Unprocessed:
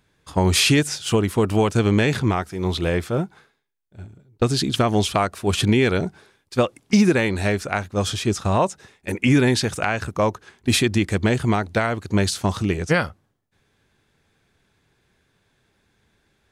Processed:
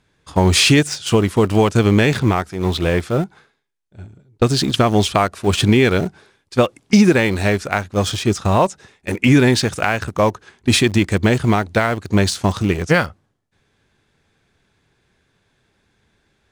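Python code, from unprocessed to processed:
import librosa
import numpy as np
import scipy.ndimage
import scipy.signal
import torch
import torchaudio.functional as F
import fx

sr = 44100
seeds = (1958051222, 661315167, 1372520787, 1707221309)

p1 = scipy.signal.sosfilt(scipy.signal.butter(2, 10000.0, 'lowpass', fs=sr, output='sos'), x)
p2 = np.where(np.abs(p1) >= 10.0 ** (-23.0 / 20.0), p1, 0.0)
p3 = p1 + (p2 * 10.0 ** (-10.0 / 20.0))
y = p3 * 10.0 ** (2.0 / 20.0)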